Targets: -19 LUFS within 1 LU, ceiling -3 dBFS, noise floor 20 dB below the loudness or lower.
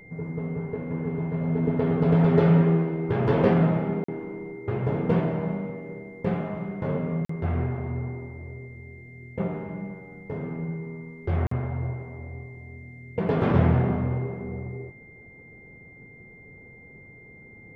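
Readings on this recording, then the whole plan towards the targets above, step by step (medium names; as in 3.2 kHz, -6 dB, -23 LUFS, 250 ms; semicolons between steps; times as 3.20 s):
dropouts 3; longest dropout 44 ms; steady tone 2.1 kHz; tone level -48 dBFS; loudness -26.0 LUFS; peak level -7.5 dBFS; loudness target -19.0 LUFS
-> interpolate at 4.04/7.25/11.47 s, 44 ms; band-stop 2.1 kHz, Q 30; trim +7 dB; peak limiter -3 dBFS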